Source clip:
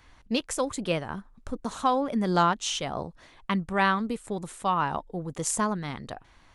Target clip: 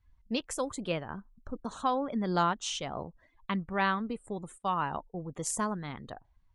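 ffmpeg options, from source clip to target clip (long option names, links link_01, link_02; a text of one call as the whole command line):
ffmpeg -i in.wav -filter_complex "[0:a]asplit=3[link_01][link_02][link_03];[link_01]afade=type=out:start_time=4.57:duration=0.02[link_04];[link_02]agate=range=-13dB:threshold=-39dB:ratio=16:detection=peak,afade=type=in:start_time=4.57:duration=0.02,afade=type=out:start_time=5.21:duration=0.02[link_05];[link_03]afade=type=in:start_time=5.21:duration=0.02[link_06];[link_04][link_05][link_06]amix=inputs=3:normalize=0,afftdn=noise_reduction=23:noise_floor=-48,volume=-5dB" out.wav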